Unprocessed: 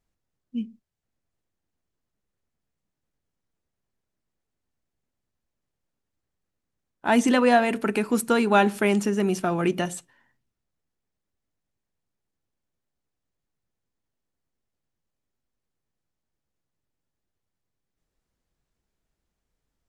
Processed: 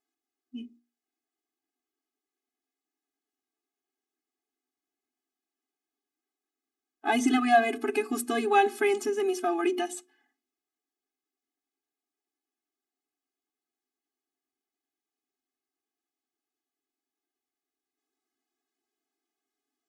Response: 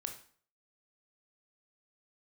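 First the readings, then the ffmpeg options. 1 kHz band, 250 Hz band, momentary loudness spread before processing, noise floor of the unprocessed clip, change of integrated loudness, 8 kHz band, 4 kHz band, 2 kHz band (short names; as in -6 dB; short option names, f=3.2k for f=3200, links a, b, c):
-1.5 dB, -6.5 dB, 15 LU, -83 dBFS, -4.0 dB, -3.5 dB, -3.5 dB, -3.0 dB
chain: -af "bandreject=f=60:t=h:w=6,bandreject=f=120:t=h:w=6,bandreject=f=180:t=h:w=6,bandreject=f=240:t=h:w=6,bandreject=f=300:t=h:w=6,bandreject=f=360:t=h:w=6,afftfilt=real='re*eq(mod(floor(b*sr/1024/220),2),1)':imag='im*eq(mod(floor(b*sr/1024/220),2),1)':win_size=1024:overlap=0.75"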